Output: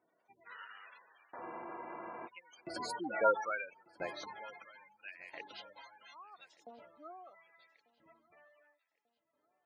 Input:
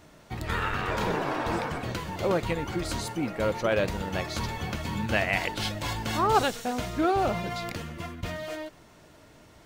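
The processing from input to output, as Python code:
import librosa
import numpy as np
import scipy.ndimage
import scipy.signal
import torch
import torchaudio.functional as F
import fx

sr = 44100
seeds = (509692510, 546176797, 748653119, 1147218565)

y = fx.doppler_pass(x, sr, speed_mps=18, closest_m=1.9, pass_at_s=3.27)
y = fx.spec_gate(y, sr, threshold_db=-15, keep='strong')
y = fx.filter_lfo_highpass(y, sr, shape='saw_up', hz=0.75, low_hz=330.0, high_hz=4100.0, q=0.79)
y = fx.echo_feedback(y, sr, ms=1192, feedback_pct=40, wet_db=-23.5)
y = fx.spec_freeze(y, sr, seeds[0], at_s=1.44, hold_s=0.82)
y = F.gain(torch.from_numpy(y), 10.0).numpy()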